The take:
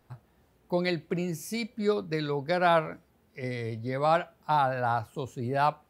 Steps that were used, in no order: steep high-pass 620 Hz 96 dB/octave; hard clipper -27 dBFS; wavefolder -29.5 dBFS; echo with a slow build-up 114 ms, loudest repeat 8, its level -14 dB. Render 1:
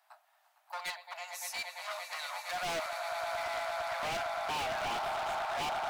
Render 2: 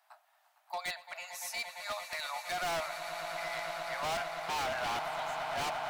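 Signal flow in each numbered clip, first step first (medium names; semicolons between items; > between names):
echo with a slow build-up > hard clipper > steep high-pass > wavefolder; steep high-pass > hard clipper > echo with a slow build-up > wavefolder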